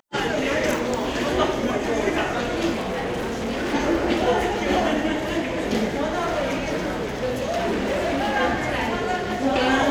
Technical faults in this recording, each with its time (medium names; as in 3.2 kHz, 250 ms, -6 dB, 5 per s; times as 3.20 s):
2.72–3.75 s: clipped -23 dBFS
6.14–8.37 s: clipped -20 dBFS